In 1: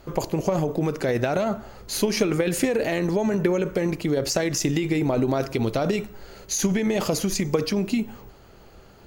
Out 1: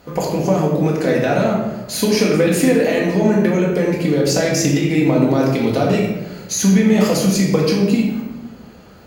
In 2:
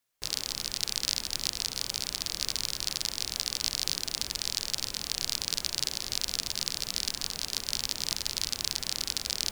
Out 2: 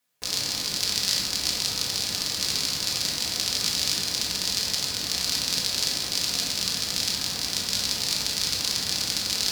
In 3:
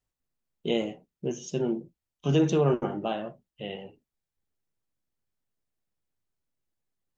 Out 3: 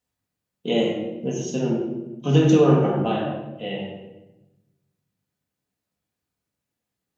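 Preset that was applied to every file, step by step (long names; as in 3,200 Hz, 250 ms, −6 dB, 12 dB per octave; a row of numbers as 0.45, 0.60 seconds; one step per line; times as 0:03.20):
high-pass filter 77 Hz 12 dB per octave
rectangular room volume 440 cubic metres, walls mixed, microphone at 1.9 metres
level +2 dB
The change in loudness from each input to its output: +8.0, +6.0, +7.0 LU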